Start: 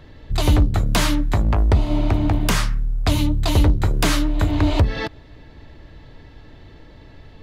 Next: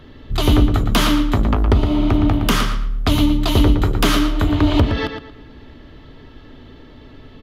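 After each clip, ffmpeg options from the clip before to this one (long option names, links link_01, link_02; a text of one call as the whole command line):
ffmpeg -i in.wav -filter_complex "[0:a]equalizer=frequency=250:width_type=o:width=0.33:gain=10,equalizer=frequency=400:width_type=o:width=0.33:gain=6,equalizer=frequency=1250:width_type=o:width=0.33:gain=7,equalizer=frequency=3150:width_type=o:width=0.33:gain=7,equalizer=frequency=8000:width_type=o:width=0.33:gain=-5,equalizer=frequency=12500:width_type=o:width=0.33:gain=4,asplit=2[link_01][link_02];[link_02]adelay=115,lowpass=frequency=4800:poles=1,volume=-7dB,asplit=2[link_03][link_04];[link_04]adelay=115,lowpass=frequency=4800:poles=1,volume=0.29,asplit=2[link_05][link_06];[link_06]adelay=115,lowpass=frequency=4800:poles=1,volume=0.29,asplit=2[link_07][link_08];[link_08]adelay=115,lowpass=frequency=4800:poles=1,volume=0.29[link_09];[link_01][link_03][link_05][link_07][link_09]amix=inputs=5:normalize=0" out.wav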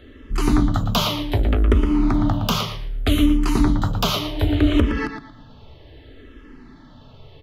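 ffmpeg -i in.wav -filter_complex "[0:a]asplit=2[link_01][link_02];[link_02]afreqshift=-0.65[link_03];[link_01][link_03]amix=inputs=2:normalize=1" out.wav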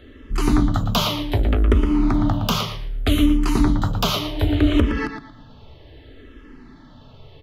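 ffmpeg -i in.wav -af anull out.wav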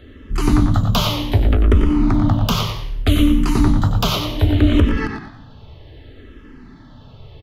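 ffmpeg -i in.wav -filter_complex "[0:a]equalizer=frequency=98:width=1.1:gain=5.5,asplit=2[link_01][link_02];[link_02]asplit=4[link_03][link_04][link_05][link_06];[link_03]adelay=93,afreqshift=-59,volume=-9dB[link_07];[link_04]adelay=186,afreqshift=-118,volume=-17.6dB[link_08];[link_05]adelay=279,afreqshift=-177,volume=-26.3dB[link_09];[link_06]adelay=372,afreqshift=-236,volume=-34.9dB[link_10];[link_07][link_08][link_09][link_10]amix=inputs=4:normalize=0[link_11];[link_01][link_11]amix=inputs=2:normalize=0,volume=1dB" out.wav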